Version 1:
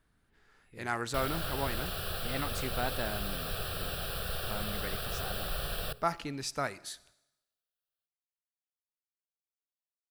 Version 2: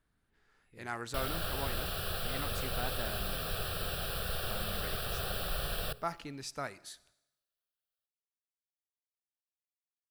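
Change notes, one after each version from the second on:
speech -5.5 dB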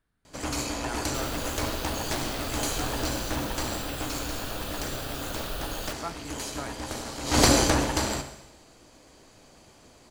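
first sound: unmuted

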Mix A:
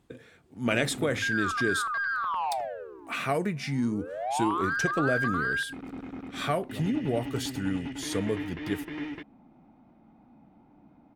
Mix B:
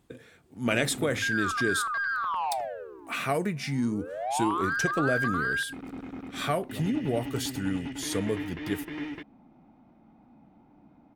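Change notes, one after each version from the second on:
master: add treble shelf 8.2 kHz +6.5 dB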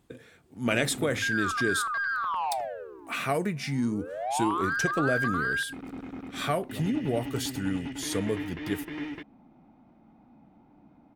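no change

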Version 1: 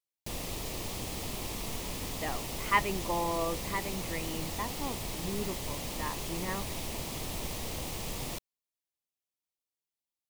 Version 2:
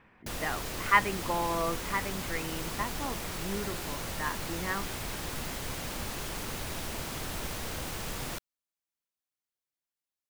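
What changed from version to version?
speech: entry -1.80 s; master: add peaking EQ 1.5 kHz +13 dB 0.5 oct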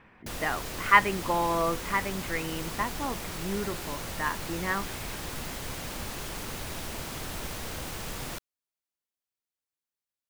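speech +4.0 dB

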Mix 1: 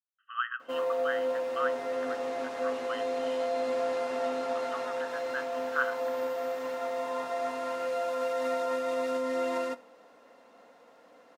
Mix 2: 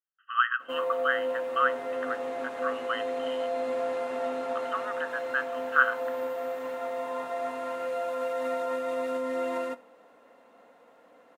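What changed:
speech +8.0 dB; master: add peaking EQ 5.2 kHz -8.5 dB 0.84 oct

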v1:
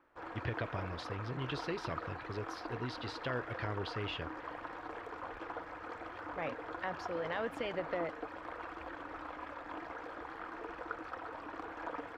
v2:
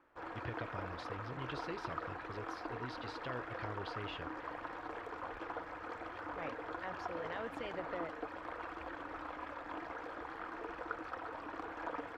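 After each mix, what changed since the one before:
speech -6.0 dB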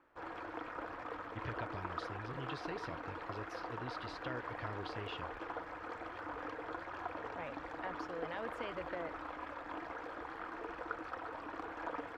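speech: entry +1.00 s

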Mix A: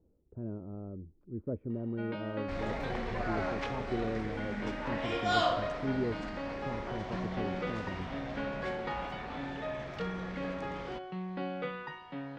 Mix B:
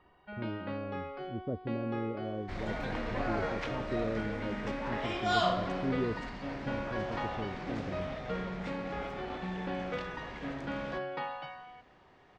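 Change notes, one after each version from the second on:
first sound: entry -1.70 s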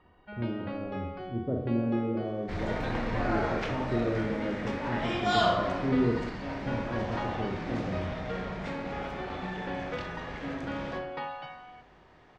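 reverb: on, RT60 0.80 s

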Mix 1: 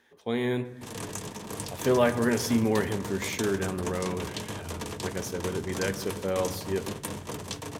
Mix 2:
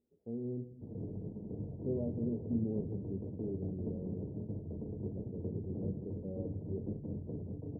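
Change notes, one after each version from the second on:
speech -7.5 dB; master: add Gaussian low-pass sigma 20 samples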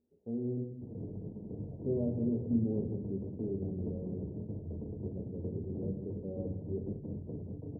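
speech: send +8.5 dB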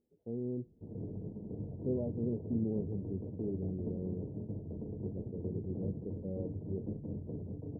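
speech +3.5 dB; reverb: off

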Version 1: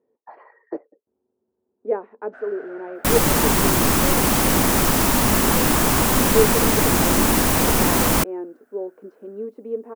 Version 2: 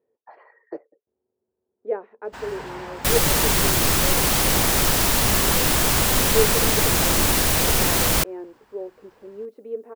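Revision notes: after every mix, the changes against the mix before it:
first sound: remove two resonant band-passes 970 Hz, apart 1.2 oct; master: add graphic EQ 250/1000/4000 Hz -9/-5/+4 dB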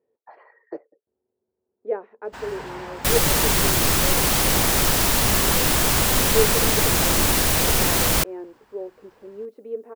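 no change

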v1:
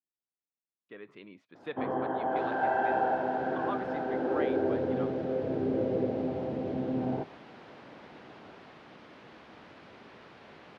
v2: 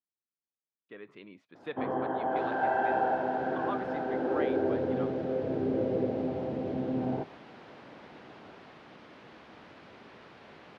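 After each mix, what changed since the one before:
no change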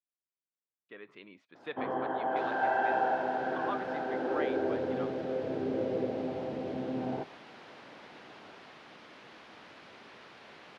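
speech: add treble shelf 7.3 kHz -12 dB; master: add tilt EQ +2 dB/octave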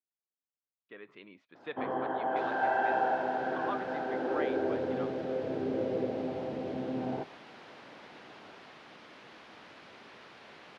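speech: add distance through air 61 m

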